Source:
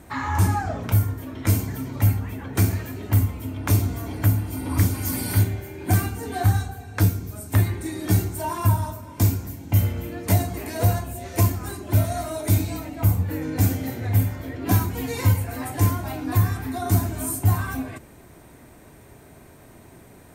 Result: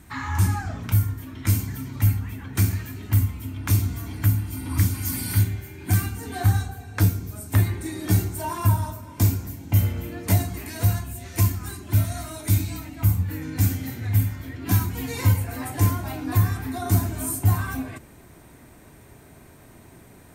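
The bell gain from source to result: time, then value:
bell 550 Hz 1.4 oct
5.97 s -12.5 dB
6.55 s -3.5 dB
10.28 s -3.5 dB
10.68 s -12 dB
14.66 s -12 dB
15.28 s -3 dB

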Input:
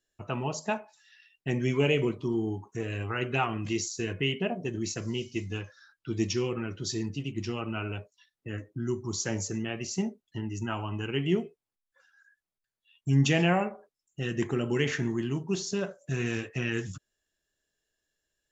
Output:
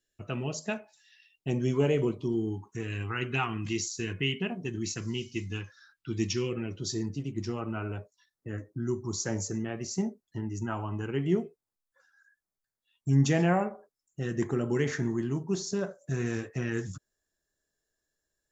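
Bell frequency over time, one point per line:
bell -12 dB 0.67 oct
0.78 s 920 Hz
1.96 s 2800 Hz
2.56 s 590 Hz
6.35 s 590 Hz
6.98 s 2800 Hz

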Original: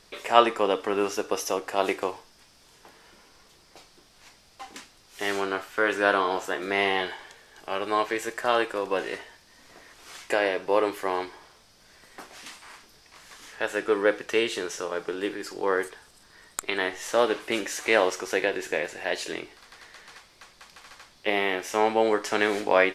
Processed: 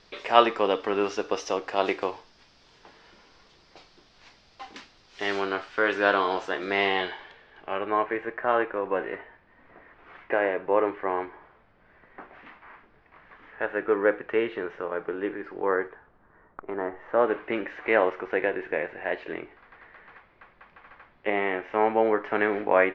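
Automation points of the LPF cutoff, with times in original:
LPF 24 dB/oct
6.84 s 5100 Hz
8.04 s 2100 Hz
15.6 s 2100 Hz
16.76 s 1200 Hz
17.41 s 2200 Hz

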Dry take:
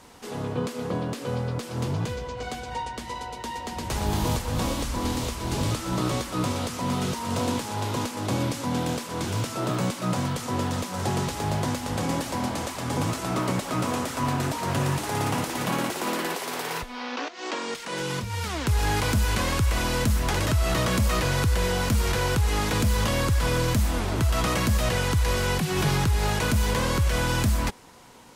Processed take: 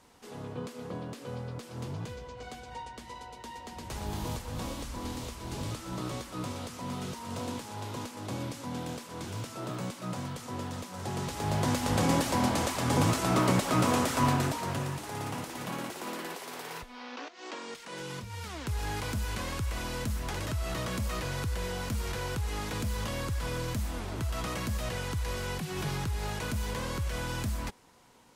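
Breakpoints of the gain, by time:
11.03 s -10 dB
11.84 s +1 dB
14.24 s +1 dB
14.92 s -10 dB

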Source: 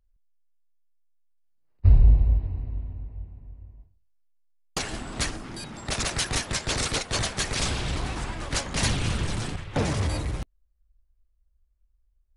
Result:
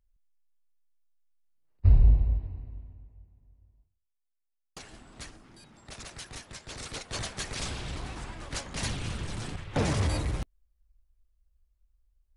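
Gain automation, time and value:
2.07 s -3 dB
3.25 s -16 dB
6.66 s -16 dB
7.18 s -8 dB
9.26 s -8 dB
9.89 s -1 dB

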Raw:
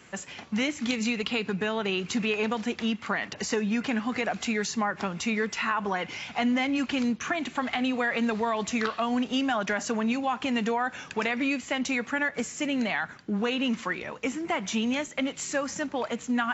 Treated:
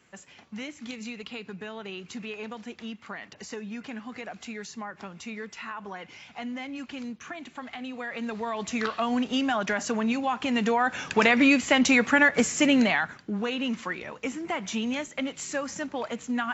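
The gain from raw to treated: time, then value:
7.88 s -10 dB
8.97 s +0.5 dB
10.45 s +0.5 dB
11.28 s +8 dB
12.71 s +8 dB
13.34 s -2 dB

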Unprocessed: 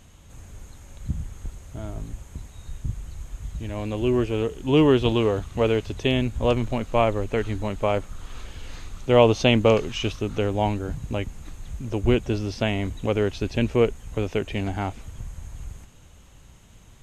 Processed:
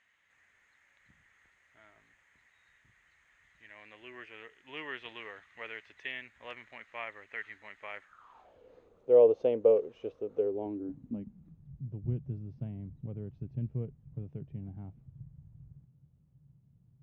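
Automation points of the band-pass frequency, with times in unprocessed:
band-pass, Q 6.4
8.01 s 1900 Hz
8.64 s 480 Hz
10.34 s 480 Hz
11.7 s 140 Hz

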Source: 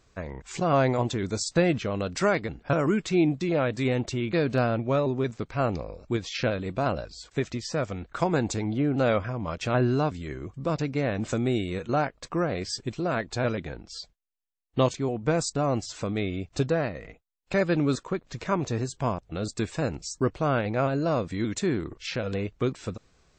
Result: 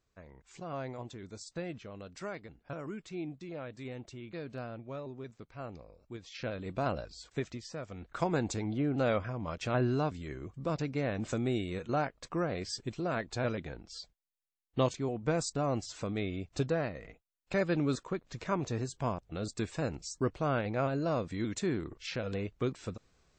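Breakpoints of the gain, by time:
6.15 s -17 dB
6.76 s -6 dB
7.3 s -6 dB
7.83 s -14 dB
8.1 s -6 dB

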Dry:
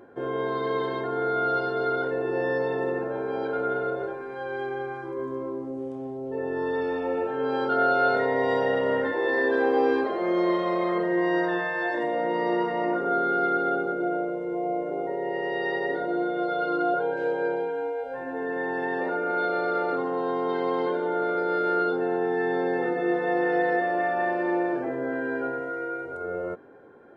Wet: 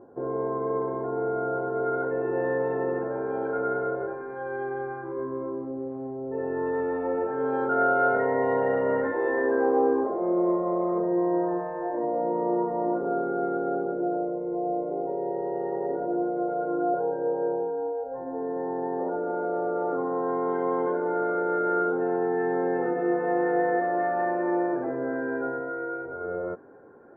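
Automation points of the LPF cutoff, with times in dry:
LPF 24 dB/oct
1.54 s 1100 Hz
2.26 s 1700 Hz
9.24 s 1700 Hz
10.22 s 1000 Hz
19.76 s 1000 Hz
20.3 s 1600 Hz

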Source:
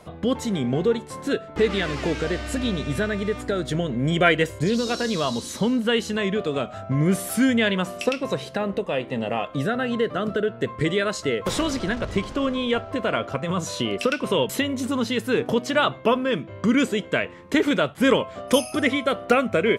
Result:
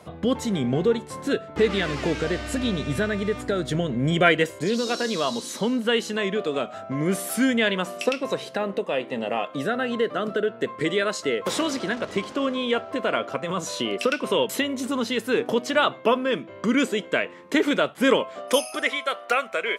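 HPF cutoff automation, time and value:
4.07 s 65 Hz
4.54 s 230 Hz
18.17 s 230 Hz
19.01 s 750 Hz

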